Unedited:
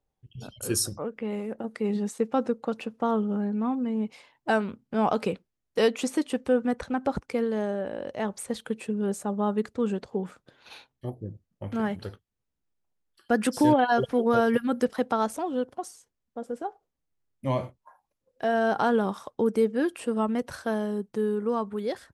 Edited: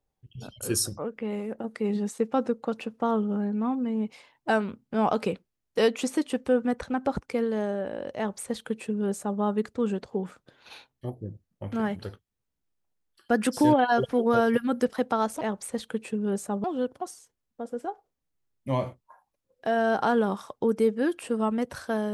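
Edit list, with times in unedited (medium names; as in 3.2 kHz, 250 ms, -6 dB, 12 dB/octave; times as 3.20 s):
8.17–9.40 s: copy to 15.41 s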